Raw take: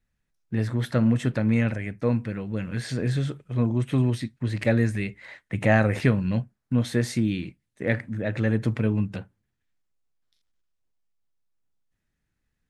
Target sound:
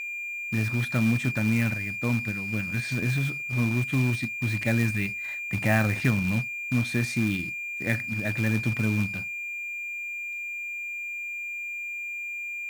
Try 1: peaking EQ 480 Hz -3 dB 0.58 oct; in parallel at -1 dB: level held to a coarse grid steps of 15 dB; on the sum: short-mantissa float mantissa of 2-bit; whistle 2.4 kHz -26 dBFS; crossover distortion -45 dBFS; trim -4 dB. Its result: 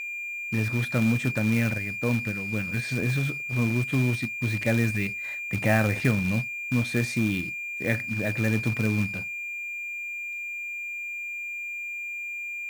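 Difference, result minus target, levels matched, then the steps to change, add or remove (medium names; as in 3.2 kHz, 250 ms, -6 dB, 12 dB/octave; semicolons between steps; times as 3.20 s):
500 Hz band +3.5 dB
change: peaking EQ 480 Hz -10.5 dB 0.58 oct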